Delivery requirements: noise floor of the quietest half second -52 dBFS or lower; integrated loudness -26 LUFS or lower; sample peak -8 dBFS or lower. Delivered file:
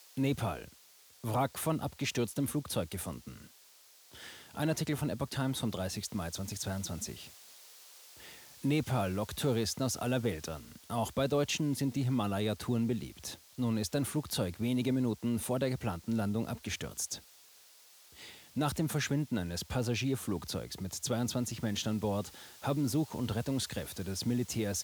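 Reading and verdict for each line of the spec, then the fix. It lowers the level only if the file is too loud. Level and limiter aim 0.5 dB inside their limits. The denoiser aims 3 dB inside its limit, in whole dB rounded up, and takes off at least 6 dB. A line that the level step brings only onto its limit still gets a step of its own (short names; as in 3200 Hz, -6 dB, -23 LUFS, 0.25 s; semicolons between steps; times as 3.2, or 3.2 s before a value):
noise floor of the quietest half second -60 dBFS: OK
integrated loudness -34.5 LUFS: OK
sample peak -18.5 dBFS: OK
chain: none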